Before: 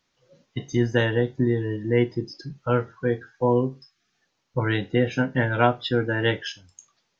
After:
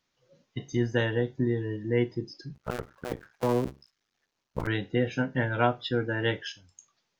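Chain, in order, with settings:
0:02.55–0:04.67: sub-harmonics by changed cycles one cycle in 2, muted
level −5 dB

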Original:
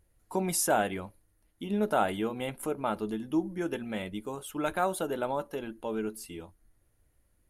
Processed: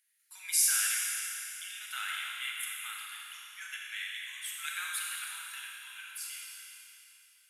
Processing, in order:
Butterworth high-pass 1,700 Hz 36 dB per octave
four-comb reverb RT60 3 s, combs from 29 ms, DRR −2.5 dB
level +2.5 dB

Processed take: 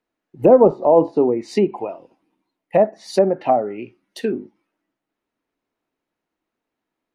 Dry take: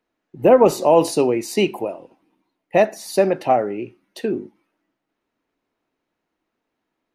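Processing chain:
treble cut that deepens with the level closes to 810 Hz, closed at −14 dBFS
noise reduction from a noise print of the clip's start 6 dB
level +2 dB

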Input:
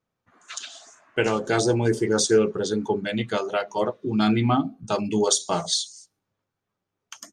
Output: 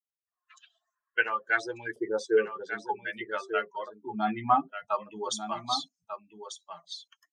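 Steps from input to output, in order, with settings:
spectral dynamics exaggerated over time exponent 2
auto-filter band-pass saw up 0.51 Hz 650–2,200 Hz
single-tap delay 1,193 ms −9.5 dB
level +8 dB

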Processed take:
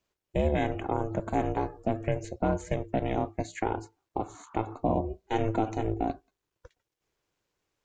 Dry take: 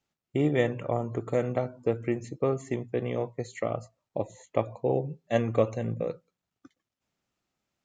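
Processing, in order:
brickwall limiter −18 dBFS, peak gain reduction 8.5 dB
ring modulation 220 Hz
0:04.21–0:04.78: noise in a band 890–1,400 Hz −60 dBFS
level +4.5 dB

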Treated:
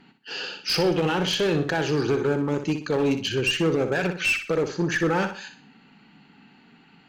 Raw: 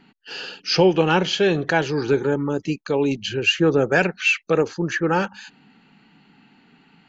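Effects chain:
brickwall limiter −13 dBFS, peak gain reduction 8 dB
asymmetric clip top −21 dBFS, bottom −16 dBFS
on a send: flutter between parallel walls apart 10.5 metres, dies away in 0.41 s

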